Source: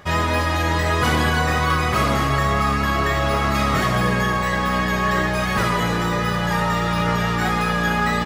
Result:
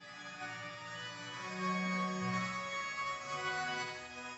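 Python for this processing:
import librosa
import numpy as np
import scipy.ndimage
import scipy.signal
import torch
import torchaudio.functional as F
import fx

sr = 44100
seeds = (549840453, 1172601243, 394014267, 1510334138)

y = x[::-1].copy()
y = scipy.signal.sosfilt(scipy.signal.butter(2, 100.0, 'highpass', fs=sr, output='sos'), y)
y = fx.high_shelf(y, sr, hz=3500.0, db=11.0)
y = fx.resonator_bank(y, sr, root=47, chord='minor', decay_s=0.6)
y = fx.stretch_vocoder(y, sr, factor=0.53)
y = scipy.signal.sosfilt(scipy.signal.cheby1(6, 3, 7500.0, 'lowpass', fs=sr, output='sos'), y)
y = fx.echo_feedback(y, sr, ms=76, feedback_pct=60, wet_db=-3.0)
y = fx.upward_expand(y, sr, threshold_db=-42.0, expansion=1.5)
y = y * 10.0 ** (-5.0 / 20.0)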